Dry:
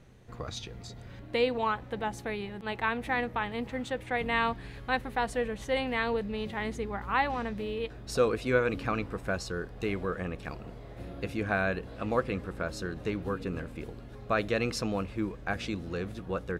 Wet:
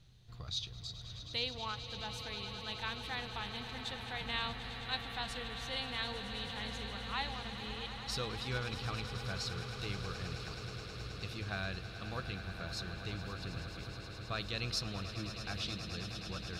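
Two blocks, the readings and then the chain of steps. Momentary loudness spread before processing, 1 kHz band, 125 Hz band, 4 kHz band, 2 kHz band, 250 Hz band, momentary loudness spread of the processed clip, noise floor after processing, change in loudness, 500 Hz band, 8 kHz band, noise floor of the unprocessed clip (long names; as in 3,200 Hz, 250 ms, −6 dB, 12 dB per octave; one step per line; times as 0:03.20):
12 LU, −11.0 dB, −3.5 dB, +3.5 dB, −8.5 dB, −12.0 dB, 6 LU, −48 dBFS, −8.0 dB, −15.5 dB, −2.5 dB, −46 dBFS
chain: octave-band graphic EQ 125/250/500/1,000/2,000/4,000/8,000 Hz +3/−10/−11/−5/−8/+12/−4 dB
echo that builds up and dies away 106 ms, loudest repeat 8, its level −14 dB
level −4.5 dB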